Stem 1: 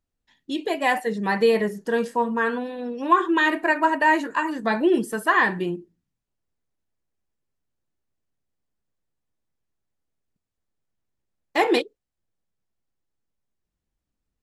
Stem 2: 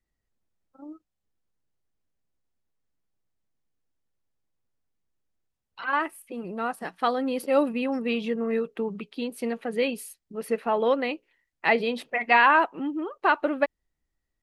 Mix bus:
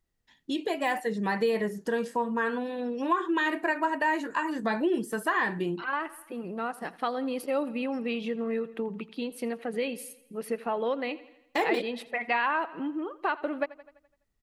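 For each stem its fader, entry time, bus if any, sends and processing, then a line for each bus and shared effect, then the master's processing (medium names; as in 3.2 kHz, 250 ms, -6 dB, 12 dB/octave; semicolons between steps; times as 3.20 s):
0.0 dB, 0.00 s, no send, no echo send, de-esser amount 70%
-1.5 dB, 0.00 s, no send, echo send -20 dB, none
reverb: none
echo: feedback delay 84 ms, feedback 51%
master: compression 2:1, threshold -29 dBFS, peak gain reduction 9.5 dB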